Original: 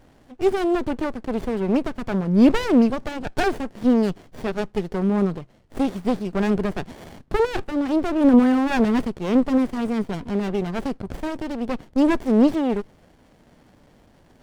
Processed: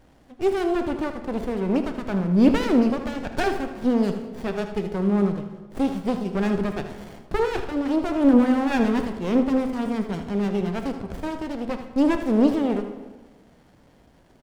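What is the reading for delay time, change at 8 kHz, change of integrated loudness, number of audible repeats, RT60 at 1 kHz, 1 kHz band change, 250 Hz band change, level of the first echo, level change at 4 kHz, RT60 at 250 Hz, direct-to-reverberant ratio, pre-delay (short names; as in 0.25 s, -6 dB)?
79 ms, n/a, -1.5 dB, 1, 1.4 s, -1.5 dB, -1.5 dB, -11.0 dB, -1.5 dB, 1.4 s, 6.0 dB, 3 ms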